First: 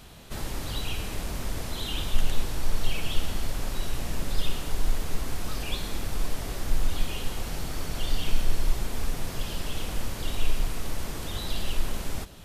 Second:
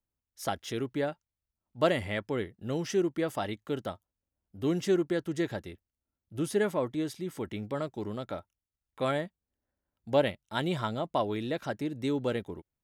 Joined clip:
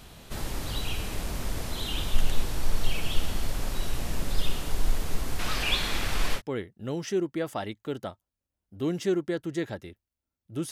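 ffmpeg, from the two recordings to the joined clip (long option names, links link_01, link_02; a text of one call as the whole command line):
ffmpeg -i cue0.wav -i cue1.wav -filter_complex "[0:a]asettb=1/sr,asplit=3[link_01][link_02][link_03];[link_01]atrim=end=5.394[link_04];[link_02]atrim=start=5.39:end=6.42,asetpts=PTS-STARTPTS,afade=type=in:duration=0.004:curve=qsin,afade=type=out:start_time=1.026:duration=0.004:curve=qsin,equalizer=frequency=2200:width_type=o:width=2.7:gain=10.5[link_05];[link_03]atrim=start=6.416[link_06];[link_04][link_05]acrossfade=duration=0.004:curve1=hsin:curve2=qsin[link_07];[link_07][link_06]acrossfade=duration=0.004:curve1=qsin:curve2=hsin,apad=whole_dur=10.71,atrim=end=10.71,atrim=end=6.42,asetpts=PTS-STARTPTS[link_08];[1:a]atrim=start=2.16:end=6.53,asetpts=PTS-STARTPTS[link_09];[link_08][link_09]acrossfade=duration=0.08:curve1=tri:curve2=tri" out.wav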